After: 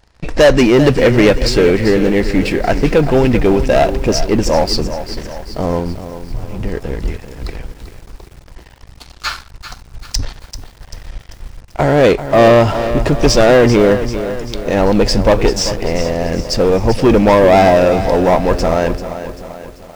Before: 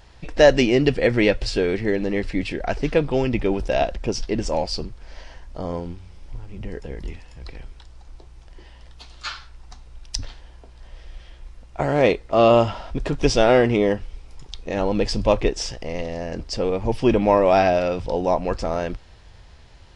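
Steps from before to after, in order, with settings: peaking EQ 3.2 kHz -5 dB 0.55 oct; waveshaping leveller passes 3; bit-crushed delay 390 ms, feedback 55%, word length 6-bit, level -11 dB

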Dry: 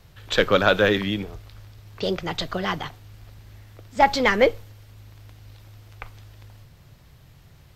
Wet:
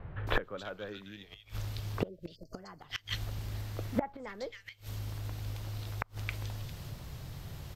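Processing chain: spectral selection erased 2.08–2.54 s, 660–4200 Hz; bands offset in time lows, highs 270 ms, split 2 kHz; inverted gate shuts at -22 dBFS, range -30 dB; trim +7 dB

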